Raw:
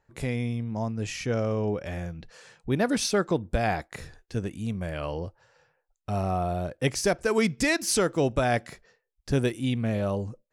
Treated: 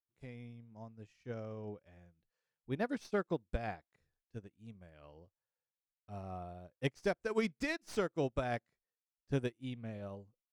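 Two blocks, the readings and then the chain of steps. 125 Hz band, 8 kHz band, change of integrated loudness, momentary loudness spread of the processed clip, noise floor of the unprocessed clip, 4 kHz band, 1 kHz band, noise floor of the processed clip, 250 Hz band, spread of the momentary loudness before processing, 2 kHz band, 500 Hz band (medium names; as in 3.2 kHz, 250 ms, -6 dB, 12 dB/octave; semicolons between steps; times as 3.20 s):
-14.5 dB, -25.0 dB, -11.5 dB, 17 LU, -78 dBFS, -16.5 dB, -13.5 dB, under -85 dBFS, -13.0 dB, 11 LU, -12.5 dB, -11.5 dB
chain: tracing distortion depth 0.04 ms; treble shelf 8.8 kHz -11 dB; upward expansion 2.5:1, over -40 dBFS; trim -7.5 dB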